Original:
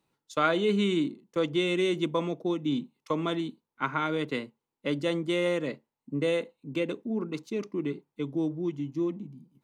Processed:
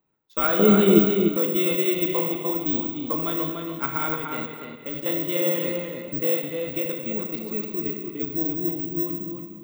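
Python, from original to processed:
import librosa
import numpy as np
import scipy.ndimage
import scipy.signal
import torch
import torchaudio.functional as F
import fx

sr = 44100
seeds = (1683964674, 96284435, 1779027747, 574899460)

y = fx.env_lowpass(x, sr, base_hz=2300.0, full_db=-25.5)
y = fx.rev_schroeder(y, sr, rt60_s=1.5, comb_ms=30, drr_db=3.0)
y = (np.kron(scipy.signal.resample_poly(y, 1, 2), np.eye(2)[0]) * 2)[:len(y)]
y = fx.peak_eq(y, sr, hz=270.0, db=12.0, octaves=2.5, at=(0.59, 0.99))
y = fx.level_steps(y, sr, step_db=10, at=(4.14, 5.06))
y = fx.echo_filtered(y, sr, ms=295, feedback_pct=30, hz=4500.0, wet_db=-4.5)
y = y * 10.0 ** (-1.0 / 20.0)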